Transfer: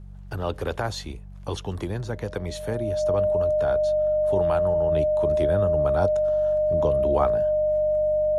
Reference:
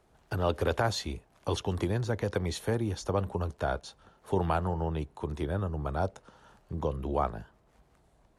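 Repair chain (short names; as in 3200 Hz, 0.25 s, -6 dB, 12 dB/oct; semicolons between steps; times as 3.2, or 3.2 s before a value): de-hum 47.8 Hz, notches 4; notch 610 Hz, Q 30; gain correction -5 dB, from 4.92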